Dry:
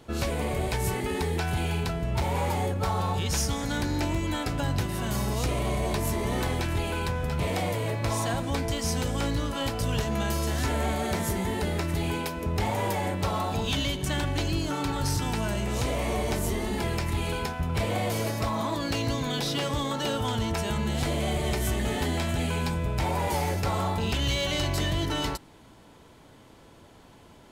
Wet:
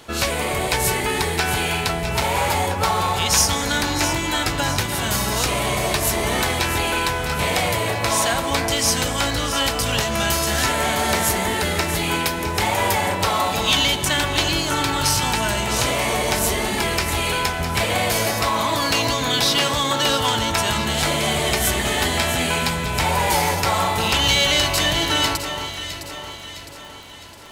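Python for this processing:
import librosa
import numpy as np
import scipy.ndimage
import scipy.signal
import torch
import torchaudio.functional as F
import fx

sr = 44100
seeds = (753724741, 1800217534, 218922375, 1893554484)

y = fx.dmg_crackle(x, sr, seeds[0], per_s=29.0, level_db=-46.0)
y = fx.tilt_shelf(y, sr, db=-6.5, hz=630.0)
y = fx.echo_alternate(y, sr, ms=330, hz=1600.0, feedback_pct=70, wet_db=-7)
y = y * 10.0 ** (7.0 / 20.0)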